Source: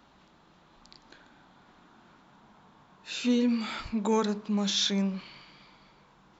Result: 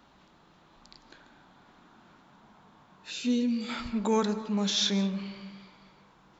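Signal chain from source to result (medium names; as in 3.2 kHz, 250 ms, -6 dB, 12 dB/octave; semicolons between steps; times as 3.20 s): 3.10–3.68 s: peaking EQ 1.1 kHz -8.5 dB -> -14.5 dB 2 oct; reverberation RT60 1.3 s, pre-delay 115 ms, DRR 14 dB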